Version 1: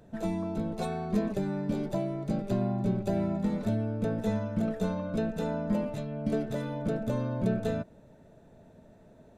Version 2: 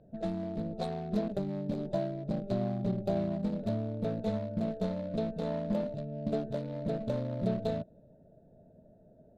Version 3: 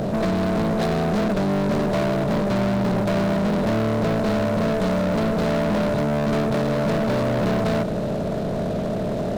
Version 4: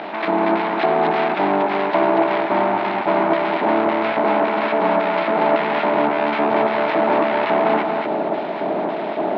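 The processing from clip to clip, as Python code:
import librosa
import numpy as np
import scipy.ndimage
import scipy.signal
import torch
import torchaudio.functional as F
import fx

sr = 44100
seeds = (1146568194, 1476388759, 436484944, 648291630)

y1 = fx.wiener(x, sr, points=41)
y1 = fx.env_lowpass(y1, sr, base_hz=2700.0, full_db=-28.5)
y1 = fx.graphic_eq_15(y1, sr, hz=(160, 630, 4000), db=(3, 9, 12))
y1 = y1 * 10.0 ** (-5.0 / 20.0)
y2 = fx.bin_compress(y1, sr, power=0.4)
y2 = fx.leveller(y2, sr, passes=5)
y2 = y2 * 10.0 ** (-3.0 / 20.0)
y3 = fx.filter_lfo_bandpass(y2, sr, shape='square', hz=1.8, low_hz=710.0, high_hz=2500.0, q=0.73)
y3 = fx.cabinet(y3, sr, low_hz=260.0, low_slope=12, high_hz=3600.0, hz=(320.0, 510.0, 870.0, 2200.0), db=(9, -9, 10, 5))
y3 = y3 + 10.0 ** (-4.0 / 20.0) * np.pad(y3, (int(236 * sr / 1000.0), 0))[:len(y3)]
y3 = y3 * 10.0 ** (7.0 / 20.0)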